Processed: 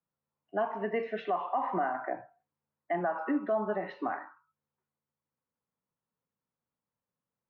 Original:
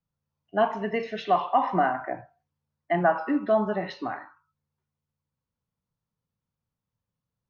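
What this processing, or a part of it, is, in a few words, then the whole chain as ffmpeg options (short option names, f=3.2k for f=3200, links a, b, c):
DJ mixer with the lows and highs turned down: -filter_complex "[0:a]acrossover=split=210 2500:gain=0.158 1 0.0708[a][b][c];[a][b][c]amix=inputs=3:normalize=0,alimiter=limit=-21.5dB:level=0:latency=1:release=228"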